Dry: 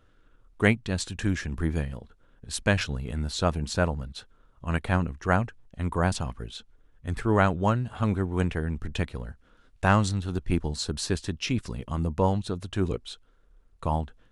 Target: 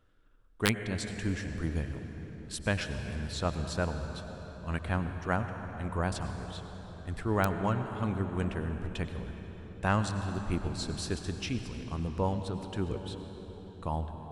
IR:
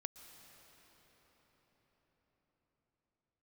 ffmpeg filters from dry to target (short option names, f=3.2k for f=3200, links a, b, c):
-filter_complex "[0:a]bandreject=f=6.5k:w=23[a];[1:a]atrim=start_sample=2205,asetrate=57330,aresample=44100[b];[a][b]afir=irnorm=-1:irlink=0,aeval=exprs='(mod(5.01*val(0)+1,2)-1)/5.01':c=same"